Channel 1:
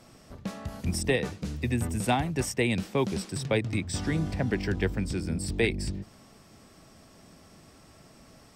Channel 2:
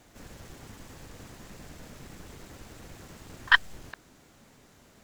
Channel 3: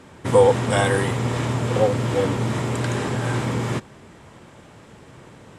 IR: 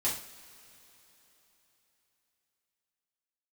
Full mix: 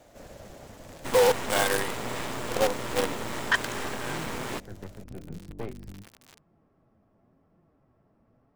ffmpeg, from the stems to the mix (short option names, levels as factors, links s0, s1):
-filter_complex "[0:a]lowpass=1100,aeval=exprs='0.2*(cos(1*acos(clip(val(0)/0.2,-1,1)))-cos(1*PI/2))+0.0562*(cos(4*acos(clip(val(0)/0.2,-1,1)))-cos(4*PI/2))':c=same,flanger=delay=5.5:depth=4.6:regen=57:speed=0.92:shape=triangular,volume=0.473[s0];[1:a]equalizer=f=600:t=o:w=0.69:g=13,volume=0.794,asplit=2[s1][s2];[2:a]highpass=210,lowshelf=f=360:g=-6,acrusher=bits=4:dc=4:mix=0:aa=0.000001,adelay=800,volume=0.944[s3];[s2]apad=whole_len=377070[s4];[s0][s4]sidechaincompress=threshold=0.00112:ratio=8:attack=36:release=139[s5];[s5][s1][s3]amix=inputs=3:normalize=0,asoftclip=type=tanh:threshold=0.188"